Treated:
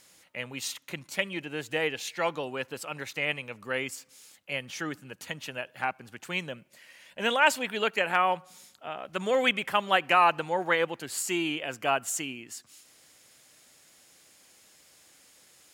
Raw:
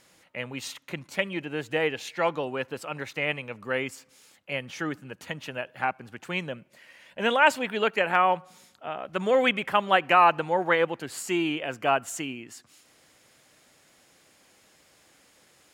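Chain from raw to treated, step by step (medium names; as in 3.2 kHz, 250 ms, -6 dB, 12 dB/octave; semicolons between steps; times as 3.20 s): treble shelf 3.3 kHz +10 dB; trim -4 dB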